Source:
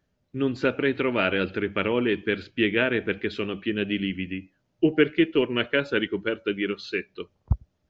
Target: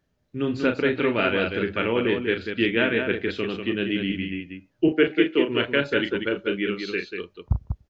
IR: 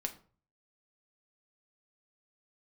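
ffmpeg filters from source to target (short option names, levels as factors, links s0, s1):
-filter_complex "[0:a]asettb=1/sr,asplit=3[s0][s1][s2];[s0]atrim=end=4.884[s3];[s1]atrim=start=4.88:end=5.48,asetpts=PTS-STARTPTS,afade=t=in:d=0.004:c=qsin,afade=t=out:st=0.596:d=0.004:c=qsin,highpass=f=190:w=0.5412,highpass=f=190:w=1.3066[s4];[s2]atrim=start=5.476[s5];[s3][s4]acrossfade=d=0.004:c1=hsin:c2=qsin[s6];[s6][s5]acrossfade=d=0.004:c1=qsin:c2=hsin,asplit=2[s7][s8];[s8]aecho=0:1:34.99|192.4:0.447|0.501[s9];[s7][s9]amix=inputs=2:normalize=0"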